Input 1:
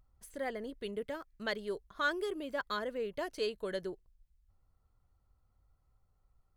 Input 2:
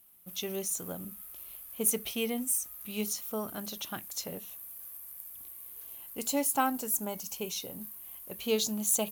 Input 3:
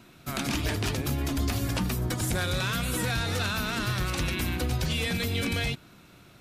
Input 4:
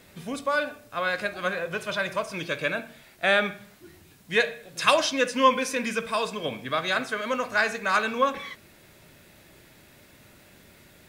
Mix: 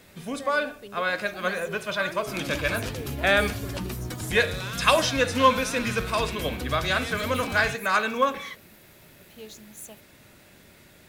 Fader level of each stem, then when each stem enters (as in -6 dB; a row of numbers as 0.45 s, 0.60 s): -3.5 dB, -15.0 dB, -4.5 dB, +0.5 dB; 0.00 s, 0.90 s, 2.00 s, 0.00 s